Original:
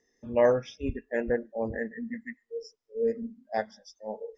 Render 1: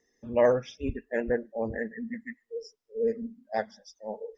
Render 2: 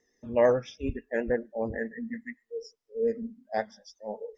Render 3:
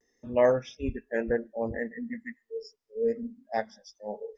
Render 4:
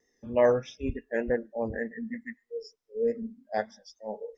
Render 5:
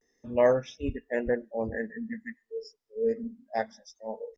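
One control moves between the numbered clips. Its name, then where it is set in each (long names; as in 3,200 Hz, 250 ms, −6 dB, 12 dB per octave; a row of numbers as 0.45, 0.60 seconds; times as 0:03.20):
pitch vibrato, speed: 16, 9.2, 0.66, 3.3, 0.31 Hertz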